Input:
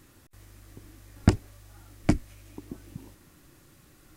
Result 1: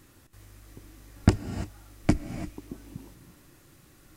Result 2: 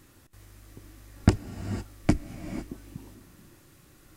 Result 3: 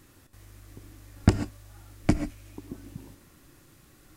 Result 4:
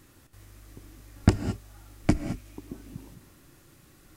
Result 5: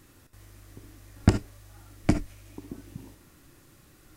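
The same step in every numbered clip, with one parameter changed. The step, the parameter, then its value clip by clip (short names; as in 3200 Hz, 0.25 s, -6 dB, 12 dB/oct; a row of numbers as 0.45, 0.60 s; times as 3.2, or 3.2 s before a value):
non-linear reverb, gate: 360, 530, 160, 240, 90 ms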